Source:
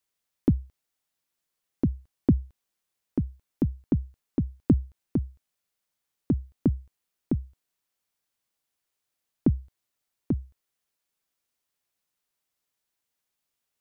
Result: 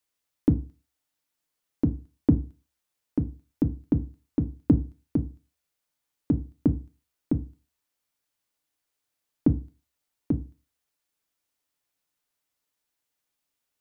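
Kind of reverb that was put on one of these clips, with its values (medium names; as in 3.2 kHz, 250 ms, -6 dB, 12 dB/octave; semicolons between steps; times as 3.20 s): FDN reverb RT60 0.33 s, low-frequency decay 1×, high-frequency decay 0.5×, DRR 8.5 dB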